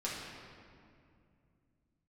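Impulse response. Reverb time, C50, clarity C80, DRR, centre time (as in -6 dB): 2.4 s, -0.5 dB, 1.5 dB, -7.0 dB, 0.111 s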